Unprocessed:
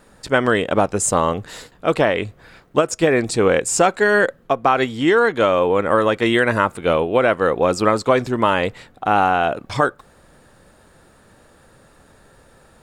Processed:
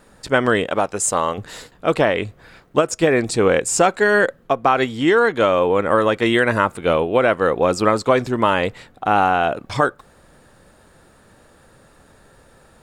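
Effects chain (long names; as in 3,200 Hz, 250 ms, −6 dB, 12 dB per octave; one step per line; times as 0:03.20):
0:00.67–0:01.38: low-shelf EQ 360 Hz −9.5 dB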